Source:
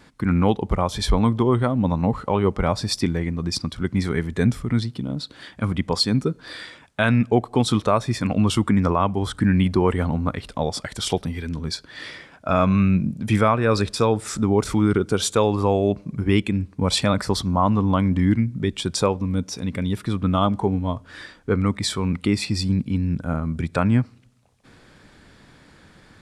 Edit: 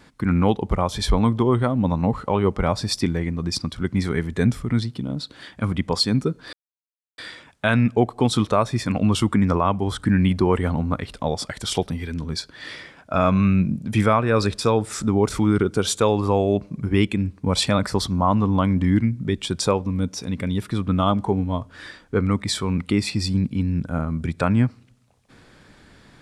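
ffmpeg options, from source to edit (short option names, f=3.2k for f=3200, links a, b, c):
-filter_complex "[0:a]asplit=2[a][b];[a]atrim=end=6.53,asetpts=PTS-STARTPTS,afade=t=out:st=6.526:d=0.004:c=hsin,apad=pad_dur=0.65[c];[b]atrim=start=6.53,asetpts=PTS-STARTPTS,afade=t=in:d=0.004:c=hsin[d];[c][d]concat=n=2:v=0:a=1"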